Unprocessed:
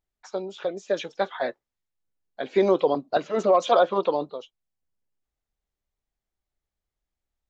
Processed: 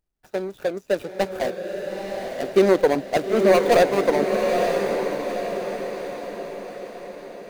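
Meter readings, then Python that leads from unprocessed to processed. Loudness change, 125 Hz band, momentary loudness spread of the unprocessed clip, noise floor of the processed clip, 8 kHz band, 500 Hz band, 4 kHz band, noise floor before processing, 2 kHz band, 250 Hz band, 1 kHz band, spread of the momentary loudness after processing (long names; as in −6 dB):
+2.0 dB, +7.5 dB, 14 LU, −53 dBFS, can't be measured, +5.0 dB, +4.0 dB, below −85 dBFS, +8.0 dB, +6.5 dB, +1.5 dB, 16 LU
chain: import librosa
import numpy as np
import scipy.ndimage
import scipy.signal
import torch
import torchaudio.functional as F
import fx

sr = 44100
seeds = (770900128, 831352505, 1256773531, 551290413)

y = scipy.ndimage.median_filter(x, 41, mode='constant')
y = fx.high_shelf(y, sr, hz=5500.0, db=10.0)
y = fx.echo_diffused(y, sr, ms=906, feedback_pct=52, wet_db=-4)
y = y * librosa.db_to_amplitude(5.0)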